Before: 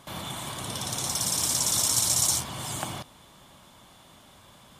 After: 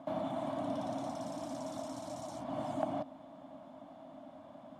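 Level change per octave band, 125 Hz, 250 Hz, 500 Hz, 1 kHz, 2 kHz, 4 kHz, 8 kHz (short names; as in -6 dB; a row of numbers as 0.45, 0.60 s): -11.5, +1.5, +4.0, -3.5, -15.0, -25.0, -32.0 dB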